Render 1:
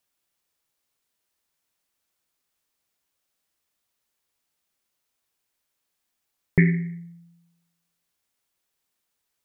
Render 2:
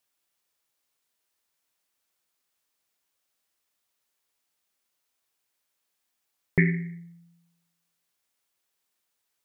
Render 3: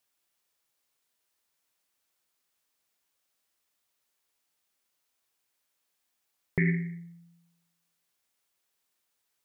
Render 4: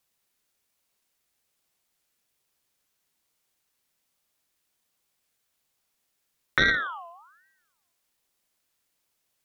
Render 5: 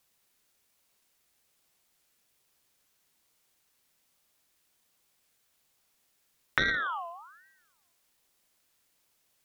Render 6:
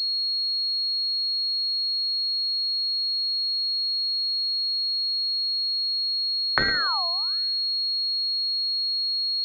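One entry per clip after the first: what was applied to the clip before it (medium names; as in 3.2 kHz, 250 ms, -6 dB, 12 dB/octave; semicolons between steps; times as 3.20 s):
bass shelf 250 Hz -6.5 dB
peak limiter -15.5 dBFS, peak gain reduction 8 dB
Chebyshev shaper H 2 -7 dB, 7 -43 dB, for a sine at -15 dBFS; ring modulator with a swept carrier 1.3 kHz, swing 35%, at 1.2 Hz; trim +6 dB
compression 4:1, threshold -29 dBFS, peak gain reduction 11 dB; trim +4 dB
class-D stage that switches slowly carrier 4.3 kHz; trim +5.5 dB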